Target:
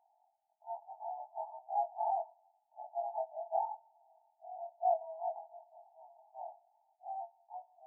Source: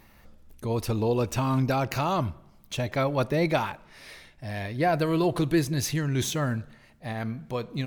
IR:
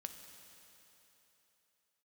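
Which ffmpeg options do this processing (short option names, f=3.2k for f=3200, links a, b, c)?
-af "afftfilt=real='re':imag='-im':win_size=2048:overlap=0.75,asuperpass=centerf=770:order=12:qfactor=3.1,volume=2dB"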